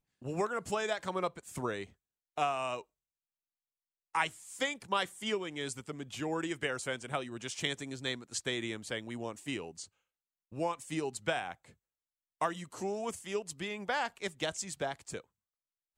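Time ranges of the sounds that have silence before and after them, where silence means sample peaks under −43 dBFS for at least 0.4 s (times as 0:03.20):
0:02.38–0:02.81
0:04.15–0:09.85
0:10.53–0:11.53
0:12.41–0:15.20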